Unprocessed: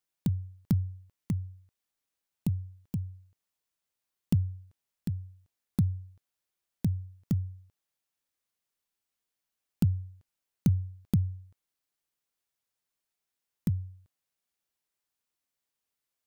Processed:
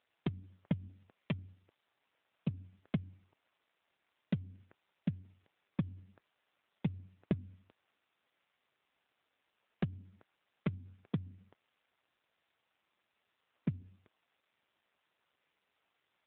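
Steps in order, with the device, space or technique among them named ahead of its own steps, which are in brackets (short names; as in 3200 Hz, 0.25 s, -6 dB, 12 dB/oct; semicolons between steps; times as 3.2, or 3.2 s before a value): voicemail (BPF 370–3100 Hz; compressor 6:1, threshold -42 dBFS, peak gain reduction 10.5 dB; gain +17.5 dB; AMR-NB 7.4 kbps 8000 Hz)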